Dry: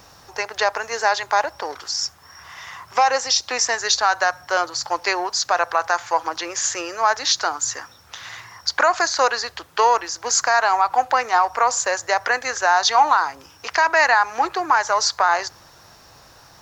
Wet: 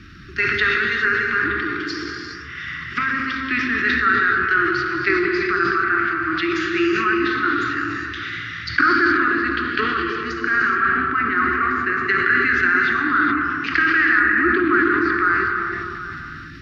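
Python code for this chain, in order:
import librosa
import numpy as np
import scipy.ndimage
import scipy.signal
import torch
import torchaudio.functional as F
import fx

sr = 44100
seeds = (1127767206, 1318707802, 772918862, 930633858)

p1 = fx.env_lowpass_down(x, sr, base_hz=1300.0, full_db=-17.0)
p2 = scipy.signal.sosfilt(scipy.signal.cheby2(4, 40, [490.0, 980.0], 'bandstop', fs=sr, output='sos'), p1)
p3 = fx.peak_eq(p2, sr, hz=260.0, db=2.5, octaves=0.77)
p4 = 10.0 ** (-18.5 / 20.0) * np.tanh(p3 / 10.0 ** (-18.5 / 20.0))
p5 = p3 + (p4 * librosa.db_to_amplitude(-4.0))
p6 = fx.air_absorb(p5, sr, metres=380.0)
p7 = fx.echo_stepped(p6, sr, ms=153, hz=220.0, octaves=0.7, feedback_pct=70, wet_db=-2)
p8 = fx.rev_gated(p7, sr, seeds[0], gate_ms=450, shape='flat', drr_db=0.5)
p9 = fx.sustainer(p8, sr, db_per_s=22.0)
y = p9 * librosa.db_to_amplitude(6.5)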